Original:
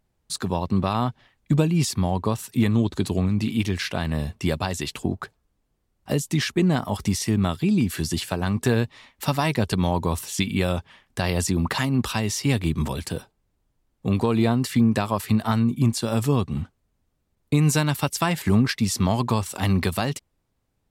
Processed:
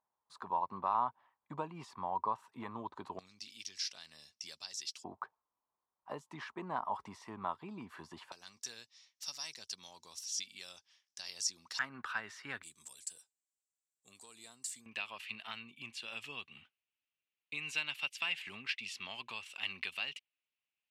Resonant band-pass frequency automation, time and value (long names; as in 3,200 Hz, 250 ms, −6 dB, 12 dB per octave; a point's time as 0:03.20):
resonant band-pass, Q 5.2
990 Hz
from 0:03.19 5,400 Hz
from 0:05.04 990 Hz
from 0:08.32 5,600 Hz
from 0:11.79 1,500 Hz
from 0:12.63 7,700 Hz
from 0:14.86 2,700 Hz